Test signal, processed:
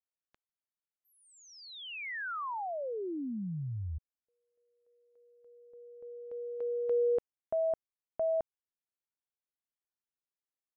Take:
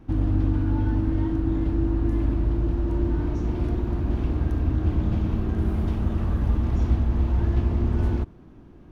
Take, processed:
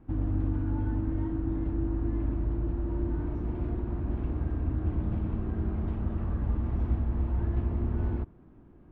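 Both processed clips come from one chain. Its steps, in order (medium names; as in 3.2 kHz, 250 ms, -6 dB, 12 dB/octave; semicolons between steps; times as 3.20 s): low-pass 2.1 kHz 12 dB/octave; trim -6.5 dB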